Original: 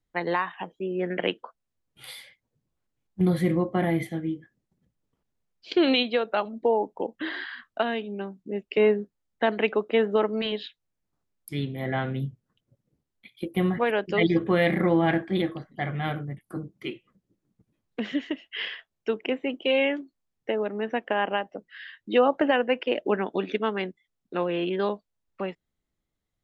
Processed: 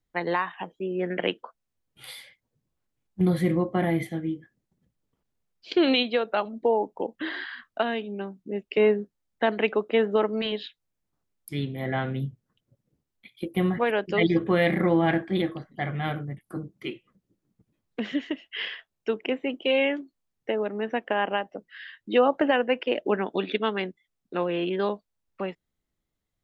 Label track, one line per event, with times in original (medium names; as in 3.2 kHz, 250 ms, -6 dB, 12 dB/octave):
23.370000	23.800000	resonant high shelf 5.6 kHz -13 dB, Q 3